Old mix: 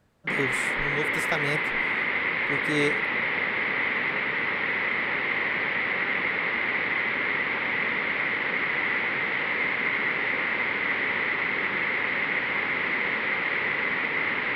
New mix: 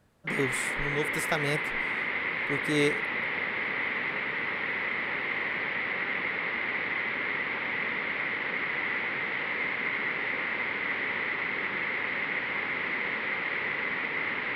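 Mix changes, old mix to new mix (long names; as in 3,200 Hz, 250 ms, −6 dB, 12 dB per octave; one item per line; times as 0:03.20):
background −4.5 dB
master: add parametric band 11,000 Hz +5 dB 0.54 octaves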